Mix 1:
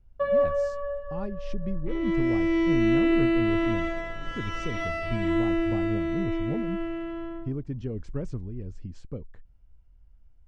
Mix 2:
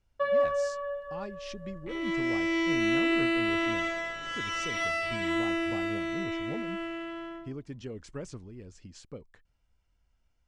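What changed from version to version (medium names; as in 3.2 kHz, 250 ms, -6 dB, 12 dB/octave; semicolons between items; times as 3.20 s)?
master: add tilt EQ +3.5 dB/octave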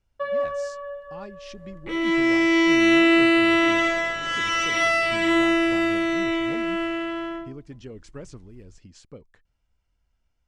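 second sound +9.5 dB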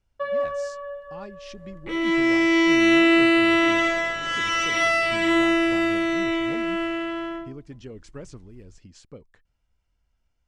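no change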